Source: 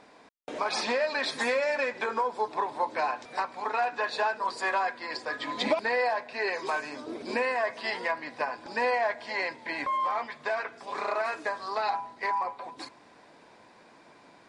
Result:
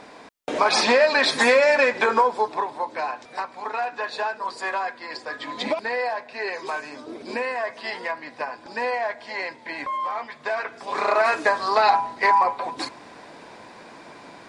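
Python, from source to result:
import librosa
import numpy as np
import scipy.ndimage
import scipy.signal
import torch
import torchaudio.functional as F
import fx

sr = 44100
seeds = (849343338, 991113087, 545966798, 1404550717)

y = fx.gain(x, sr, db=fx.line((2.17, 10.5), (2.8, 1.0), (10.23, 1.0), (11.34, 11.5)))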